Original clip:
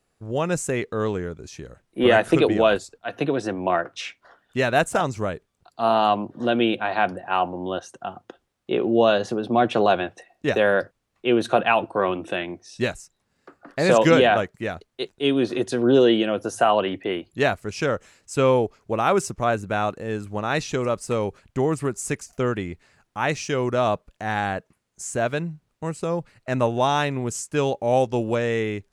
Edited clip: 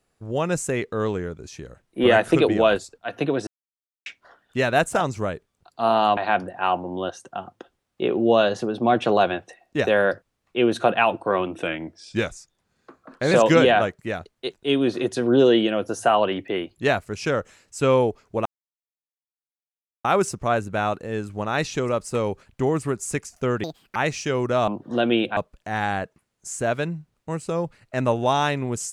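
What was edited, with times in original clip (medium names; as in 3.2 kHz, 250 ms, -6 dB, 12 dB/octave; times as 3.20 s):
3.47–4.06 s: mute
6.17–6.86 s: move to 23.91 s
12.32–13.87 s: speed 92%
19.01 s: insert silence 1.59 s
22.60–23.19 s: speed 183%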